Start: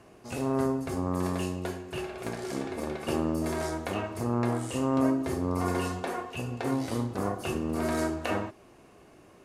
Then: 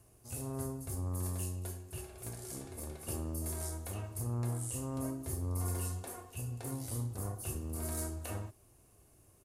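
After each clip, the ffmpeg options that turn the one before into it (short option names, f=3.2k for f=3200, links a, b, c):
-af "firequalizer=gain_entry='entry(110,0);entry(170,-14);entry(1900,-17);entry(10000,7)':delay=0.05:min_phase=1"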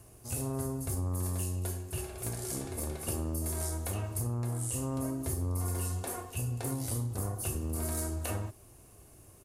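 -af "acompressor=threshold=-38dB:ratio=6,volume=8dB"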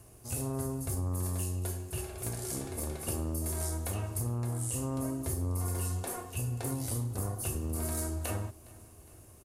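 -af "aecho=1:1:411|822|1233|1644:0.075|0.0435|0.0252|0.0146"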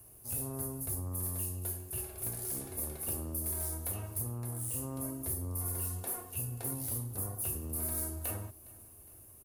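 -filter_complex "[0:a]acrossover=split=210|5200[a][b][c];[c]asoftclip=type=hard:threshold=-38dB[d];[a][b][d]amix=inputs=3:normalize=0,aexciter=amount=6.6:drive=2.8:freq=10k,volume=-6dB"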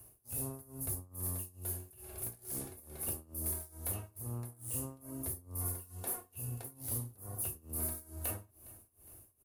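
-af "tremolo=f=2.3:d=0.93"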